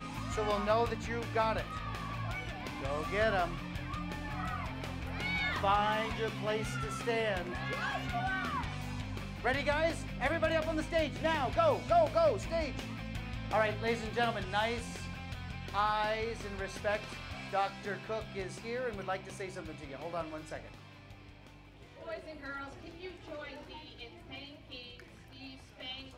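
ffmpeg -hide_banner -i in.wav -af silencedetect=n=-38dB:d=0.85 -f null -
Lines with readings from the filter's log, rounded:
silence_start: 20.66
silence_end: 22.08 | silence_duration: 1.42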